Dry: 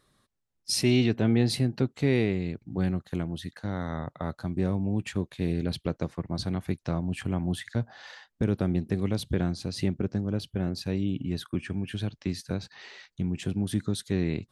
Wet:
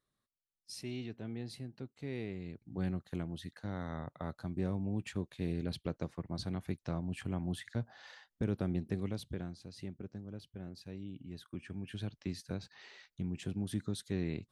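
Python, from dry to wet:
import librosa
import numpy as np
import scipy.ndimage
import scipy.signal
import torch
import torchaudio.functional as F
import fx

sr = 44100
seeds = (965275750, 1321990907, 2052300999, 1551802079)

y = fx.gain(x, sr, db=fx.line((1.93, -19.0), (2.88, -8.0), (8.95, -8.0), (9.59, -16.5), (11.24, -16.5), (12.03, -8.5)))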